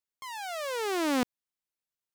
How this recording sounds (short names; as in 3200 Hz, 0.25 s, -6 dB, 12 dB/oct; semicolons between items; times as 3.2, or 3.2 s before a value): noise floor -93 dBFS; spectral tilt -2.5 dB/oct